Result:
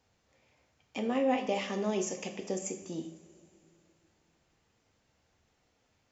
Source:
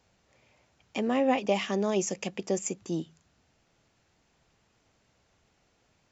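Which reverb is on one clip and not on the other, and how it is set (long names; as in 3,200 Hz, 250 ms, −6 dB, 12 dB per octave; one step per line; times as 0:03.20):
coupled-rooms reverb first 0.51 s, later 3 s, from −18 dB, DRR 4 dB
level −5.5 dB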